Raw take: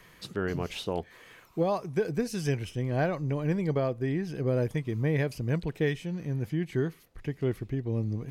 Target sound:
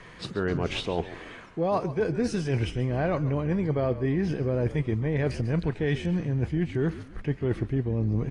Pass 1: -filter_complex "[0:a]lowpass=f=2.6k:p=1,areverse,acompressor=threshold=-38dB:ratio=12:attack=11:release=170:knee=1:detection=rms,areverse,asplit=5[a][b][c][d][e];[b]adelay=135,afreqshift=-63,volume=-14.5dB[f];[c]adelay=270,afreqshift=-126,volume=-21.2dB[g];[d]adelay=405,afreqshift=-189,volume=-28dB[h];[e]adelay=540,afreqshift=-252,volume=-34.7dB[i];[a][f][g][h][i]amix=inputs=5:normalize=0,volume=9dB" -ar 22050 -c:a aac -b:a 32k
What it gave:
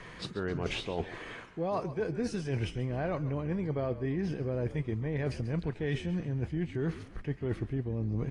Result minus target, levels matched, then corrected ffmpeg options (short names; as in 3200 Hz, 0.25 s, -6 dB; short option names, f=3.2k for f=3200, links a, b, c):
compressor: peak gain reduction +6.5 dB
-filter_complex "[0:a]lowpass=f=2.6k:p=1,areverse,acompressor=threshold=-31dB:ratio=12:attack=11:release=170:knee=1:detection=rms,areverse,asplit=5[a][b][c][d][e];[b]adelay=135,afreqshift=-63,volume=-14.5dB[f];[c]adelay=270,afreqshift=-126,volume=-21.2dB[g];[d]adelay=405,afreqshift=-189,volume=-28dB[h];[e]adelay=540,afreqshift=-252,volume=-34.7dB[i];[a][f][g][h][i]amix=inputs=5:normalize=0,volume=9dB" -ar 22050 -c:a aac -b:a 32k